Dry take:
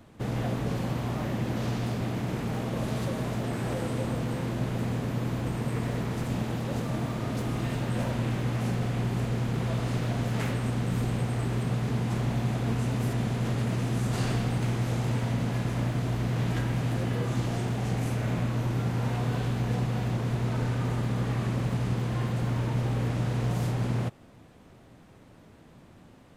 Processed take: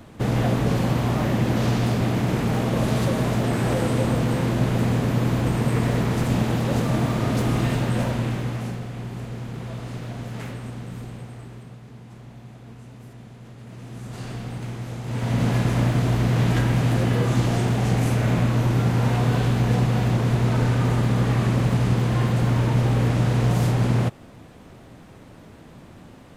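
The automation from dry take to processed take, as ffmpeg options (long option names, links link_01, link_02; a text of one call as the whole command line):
ffmpeg -i in.wav -af "volume=31dB,afade=type=out:start_time=7.56:duration=1.29:silence=0.237137,afade=type=out:start_time=10.45:duration=1.35:silence=0.298538,afade=type=in:start_time=13.58:duration=0.93:silence=0.298538,afade=type=in:start_time=15.05:duration=0.4:silence=0.251189" out.wav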